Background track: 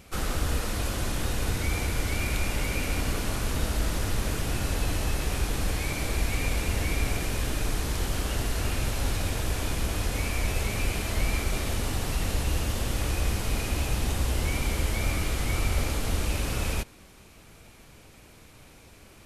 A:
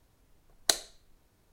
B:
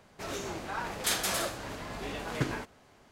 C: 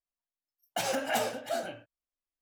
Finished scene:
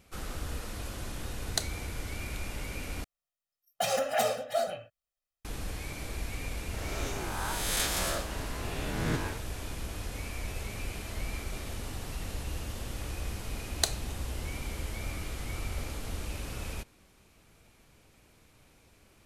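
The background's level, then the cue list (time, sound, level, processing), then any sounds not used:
background track -9.5 dB
0.88 add A -6 dB
3.04 replace with C -1 dB + comb 1.6 ms, depth 82%
6.73 add B -4.5 dB + spectral swells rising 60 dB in 1.52 s
13.14 add A -3 dB

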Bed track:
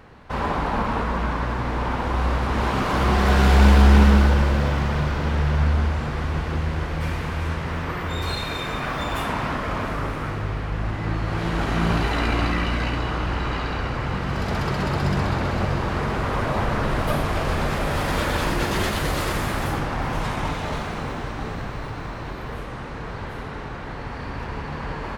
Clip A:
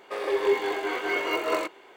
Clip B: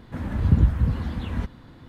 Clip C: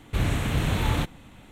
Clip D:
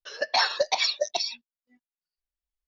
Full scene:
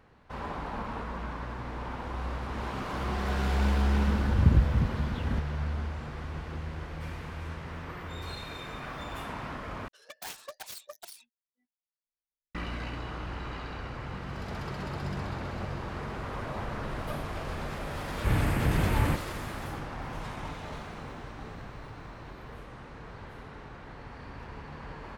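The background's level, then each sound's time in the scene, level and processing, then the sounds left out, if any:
bed track -12.5 dB
3.94 add B -4 dB
9.88 replace with D -17.5 dB + self-modulated delay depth 0.43 ms
18.11 add C -1.5 dB + Butterworth band-stop 4800 Hz, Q 0.77
not used: A

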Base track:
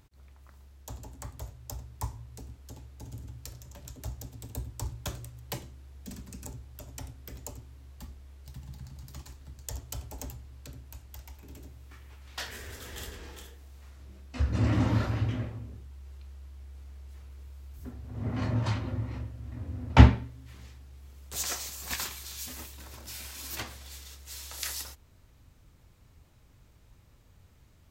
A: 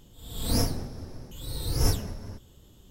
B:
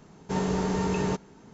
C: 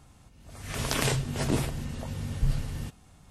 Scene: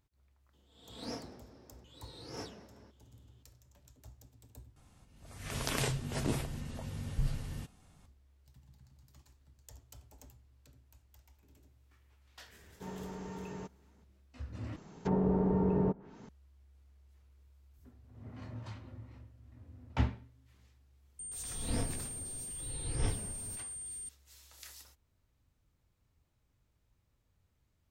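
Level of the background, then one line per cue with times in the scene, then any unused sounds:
base track -16 dB
0.53 add A -11 dB + BPF 240–4600 Hz
4.76 replace with C -6.5 dB
12.51 add B -16.5 dB + bell 4200 Hz -4 dB
14.76 replace with B -1.5 dB + treble ducked by the level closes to 700 Hz, closed at -27 dBFS
21.19 add A -9 dB + pulse-width modulation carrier 8700 Hz

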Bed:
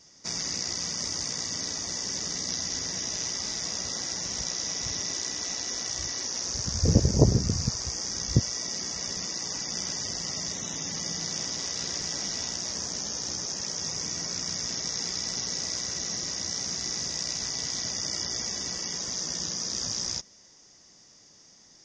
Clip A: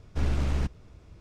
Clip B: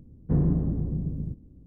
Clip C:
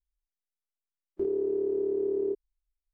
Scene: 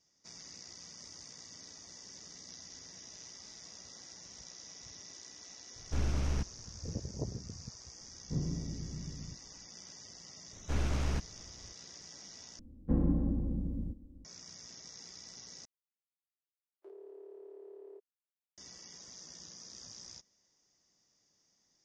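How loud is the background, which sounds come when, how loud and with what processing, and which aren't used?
bed -19 dB
5.76 add A -5.5 dB
8.01 add B -13.5 dB
10.53 add A -2 dB + low shelf 380 Hz -4 dB
12.59 replace with B -5.5 dB + comb 3.7 ms, depth 83%
15.65 replace with C -9.5 dB + HPF 580 Hz 24 dB/oct

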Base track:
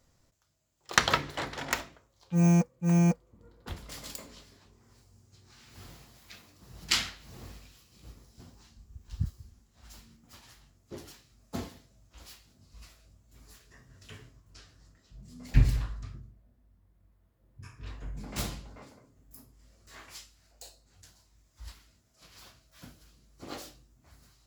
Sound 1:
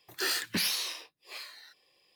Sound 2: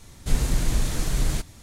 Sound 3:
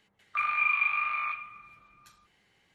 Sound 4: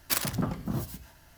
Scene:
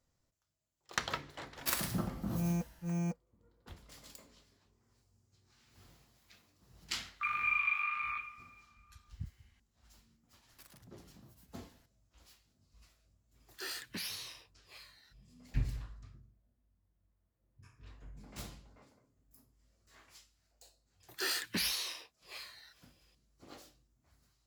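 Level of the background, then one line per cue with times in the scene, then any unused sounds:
base track -12 dB
1.56 add 4 -8 dB + non-linear reverb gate 0.25 s falling, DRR 3 dB
6.86 add 3 -5.5 dB + HPF 970 Hz
10.49 add 4 -14 dB + compressor 3:1, threshold -46 dBFS
13.4 add 1 -11.5 dB
21 add 1 -4.5 dB
not used: 2

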